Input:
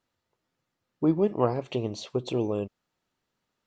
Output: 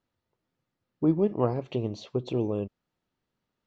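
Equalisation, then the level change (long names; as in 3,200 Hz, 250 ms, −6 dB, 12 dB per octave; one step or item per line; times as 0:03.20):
high-frequency loss of the air 130 metres
low-shelf EQ 470 Hz +6.5 dB
high-shelf EQ 4,600 Hz +7 dB
−4.5 dB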